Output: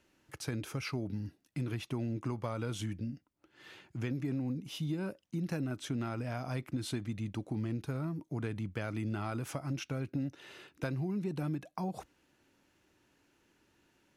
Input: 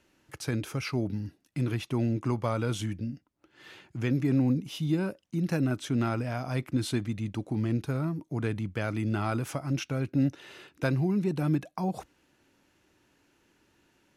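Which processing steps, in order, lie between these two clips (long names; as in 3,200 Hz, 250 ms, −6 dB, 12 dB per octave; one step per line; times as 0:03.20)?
downward compressor, threshold −28 dBFS, peak gain reduction 8 dB
level −3.5 dB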